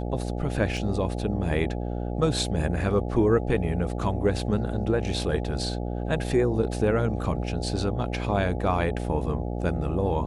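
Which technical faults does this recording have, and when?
buzz 60 Hz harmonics 14 -30 dBFS
0.77 s: dropout 3.6 ms

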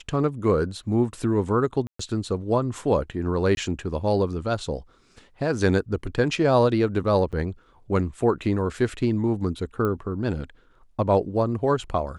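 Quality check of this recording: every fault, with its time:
1.87–1.99 s: dropout 124 ms
3.55–3.57 s: dropout 21 ms
7.32–7.33 s: dropout 7.1 ms
9.85 s: pop -16 dBFS

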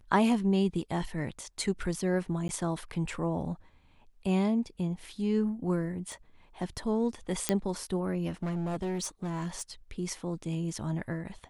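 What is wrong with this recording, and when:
2.48–2.49 s: dropout 11 ms
6.12 s: pop
7.49 s: pop -10 dBFS
8.43–9.62 s: clipped -29 dBFS

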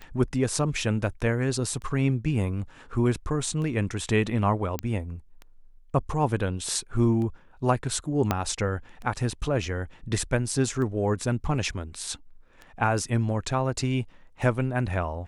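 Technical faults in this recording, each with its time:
tick 33 1/3 rpm -26 dBFS
4.79 s: pop -13 dBFS
8.31 s: pop -9 dBFS

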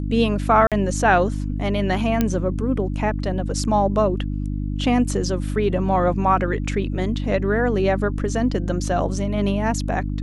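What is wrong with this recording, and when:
hum 50 Hz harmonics 6 -25 dBFS
0.67–0.72 s: dropout 47 ms
2.21 s: pop -6 dBFS

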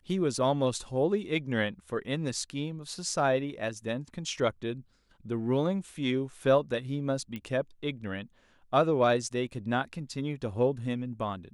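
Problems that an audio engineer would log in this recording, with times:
7.36 s: pop -25 dBFS

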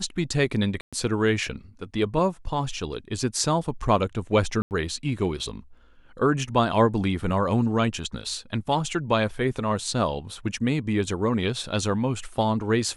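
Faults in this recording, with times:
0.81–0.93 s: dropout 116 ms
4.62–4.71 s: dropout 89 ms

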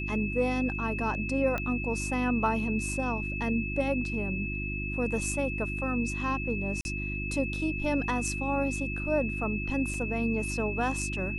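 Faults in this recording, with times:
hum 50 Hz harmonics 7 -35 dBFS
whine 2.6 kHz -35 dBFS
1.58 s: pop -18 dBFS
6.81–6.85 s: dropout 41 ms
9.94 s: dropout 2.6 ms

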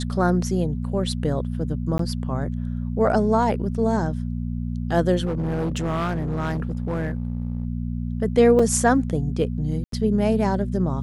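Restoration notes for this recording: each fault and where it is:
hum 60 Hz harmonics 4 -27 dBFS
1.98–1.99 s: dropout 13 ms
5.25–7.65 s: clipped -21 dBFS
8.59 s: dropout 4.4 ms
9.84–9.92 s: dropout 83 ms

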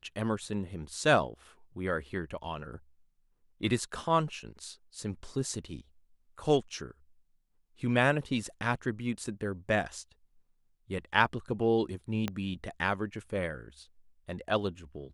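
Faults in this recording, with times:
12.28 s: pop -17 dBFS

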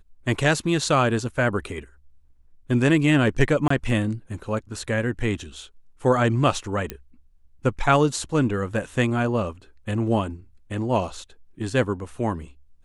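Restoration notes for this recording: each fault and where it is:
3.68–3.70 s: dropout 24 ms
6.90 s: pop -13 dBFS

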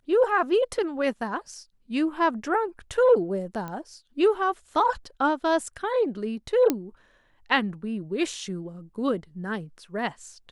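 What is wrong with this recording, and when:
3.68 s: pop -22 dBFS
6.70 s: pop -9 dBFS

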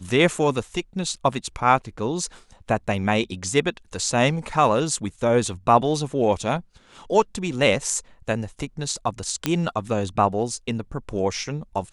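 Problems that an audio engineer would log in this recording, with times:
9.46 s: pop -6 dBFS

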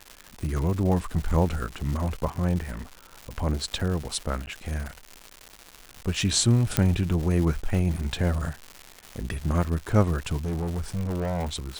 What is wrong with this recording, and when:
crackle 280 per s -31 dBFS
2.71–3.13 s: clipped -31 dBFS
4.46–4.47 s: dropout 9.9 ms
6.77 s: pop -4 dBFS
10.44–11.50 s: clipped -24.5 dBFS

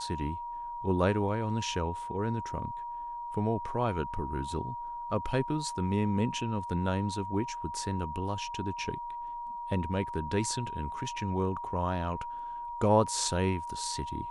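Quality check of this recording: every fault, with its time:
whine 950 Hz -36 dBFS

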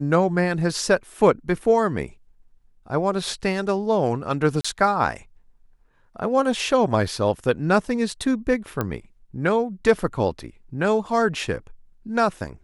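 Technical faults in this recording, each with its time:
4.61–4.64 s: dropout 35 ms
8.81 s: pop -11 dBFS

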